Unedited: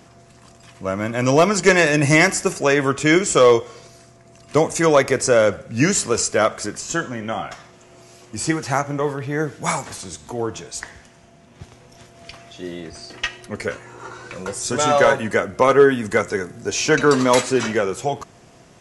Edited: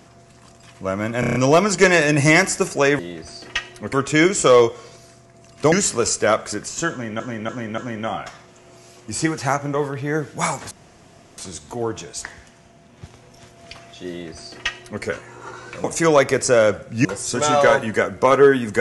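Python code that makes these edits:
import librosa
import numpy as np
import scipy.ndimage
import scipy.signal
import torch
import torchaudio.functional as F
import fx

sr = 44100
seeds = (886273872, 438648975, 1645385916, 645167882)

y = fx.edit(x, sr, fx.stutter(start_s=1.2, slice_s=0.03, count=6),
    fx.move(start_s=4.63, length_s=1.21, to_s=14.42),
    fx.repeat(start_s=7.03, length_s=0.29, count=4),
    fx.insert_room_tone(at_s=9.96, length_s=0.67),
    fx.duplicate(start_s=12.67, length_s=0.94, to_s=2.84), tone=tone)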